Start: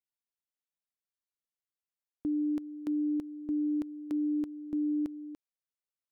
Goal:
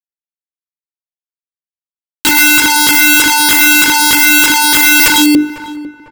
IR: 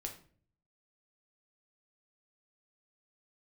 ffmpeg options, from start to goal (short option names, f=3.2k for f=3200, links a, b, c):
-filter_complex "[0:a]asettb=1/sr,asplit=3[a][b][c];[a]atrim=end=2.274[d];[b]atrim=start=2.27:end=5,asetpts=PTS-STARTPTS,afade=t=in:d=0.004:c=qsin,afade=t=out:st=2.726:d=0.004:c=qsin,aeval=exprs='val(0)+0.5*0.00668*sgn(val(0))':c=same[e];[c]atrim=start=4.996[f];[d][e]acrossfade=d=0.004:c1=hsin:c2=qsin[g];[g][f]acrossfade=d=0.004:c1=qsin:c2=hsin,tiltshelf=f=1.1k:g=6,acrusher=bits=7:mix=0:aa=0.000001,dynaudnorm=f=240:g=7:m=8dB,bandreject=f=50:t=h:w=6,bandreject=f=100:t=h:w=6,bandreject=f=150:t=h:w=6,bandreject=f=200:t=h:w=6,bandreject=f=250:t=h:w=6,bandreject=f=300:t=h:w=6,bandreject=f=350:t=h:w=6,bandreject=f=400:t=h:w=6,bandreject=f=450:t=h:w=6,aeval=exprs='(mod(26.6*val(0)+1,2)-1)/26.6':c=same,equalizer=f=740:t=o:w=0.36:g=-9.5,bandreject=f=640:w=12,asplit=2[h][i];[i]adelay=500,lowpass=f=1k:p=1,volume=-20.5dB,asplit=2[j][k];[k]adelay=500,lowpass=f=1k:p=1,volume=0.49,asplit=2[l][m];[m]adelay=500,lowpass=f=1k:p=1,volume=0.49,asplit=2[n][o];[o]adelay=500,lowpass=f=1k:p=1,volume=0.49[p];[h][j][l][n][p]amix=inputs=5:normalize=0,alimiter=level_in=33.5dB:limit=-1dB:release=50:level=0:latency=1,volume=-1dB"